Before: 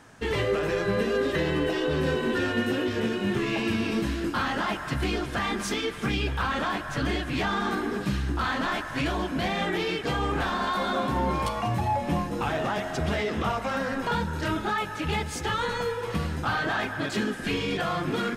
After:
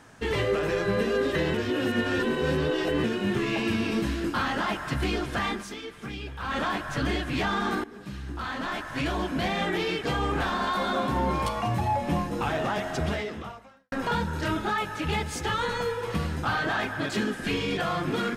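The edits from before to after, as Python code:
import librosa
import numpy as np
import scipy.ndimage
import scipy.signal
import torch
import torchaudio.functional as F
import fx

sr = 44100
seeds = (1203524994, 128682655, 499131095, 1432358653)

y = fx.edit(x, sr, fx.reverse_span(start_s=1.54, length_s=1.5),
    fx.fade_down_up(start_s=5.48, length_s=1.09, db=-9.5, fade_s=0.17),
    fx.fade_in_from(start_s=7.84, length_s=1.4, floor_db=-18.0),
    fx.fade_out_span(start_s=13.04, length_s=0.88, curve='qua'), tone=tone)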